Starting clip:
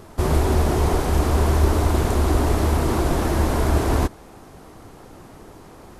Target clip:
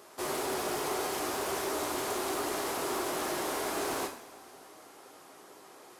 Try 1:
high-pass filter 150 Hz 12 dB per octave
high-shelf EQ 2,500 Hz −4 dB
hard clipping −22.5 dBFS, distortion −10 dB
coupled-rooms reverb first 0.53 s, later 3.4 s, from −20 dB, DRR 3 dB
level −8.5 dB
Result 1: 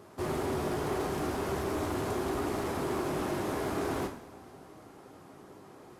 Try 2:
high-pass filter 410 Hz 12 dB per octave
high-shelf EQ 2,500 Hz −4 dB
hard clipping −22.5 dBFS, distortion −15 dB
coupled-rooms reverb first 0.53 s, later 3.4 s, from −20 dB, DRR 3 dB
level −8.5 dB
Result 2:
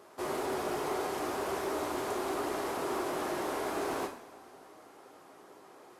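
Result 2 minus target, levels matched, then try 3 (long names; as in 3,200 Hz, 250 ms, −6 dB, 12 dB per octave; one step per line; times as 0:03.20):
4,000 Hz band −4.5 dB
high-pass filter 410 Hz 12 dB per octave
high-shelf EQ 2,500 Hz +5.5 dB
hard clipping −22.5 dBFS, distortion −13 dB
coupled-rooms reverb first 0.53 s, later 3.4 s, from −20 dB, DRR 3 dB
level −8.5 dB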